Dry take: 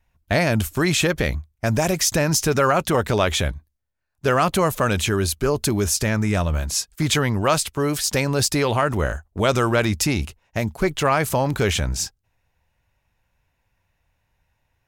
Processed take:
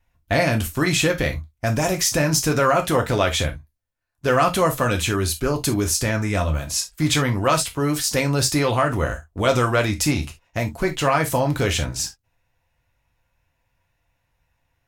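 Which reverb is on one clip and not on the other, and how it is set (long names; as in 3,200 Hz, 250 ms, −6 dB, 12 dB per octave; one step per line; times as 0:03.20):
reverb whose tail is shaped and stops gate 90 ms falling, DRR 3 dB
level −1.5 dB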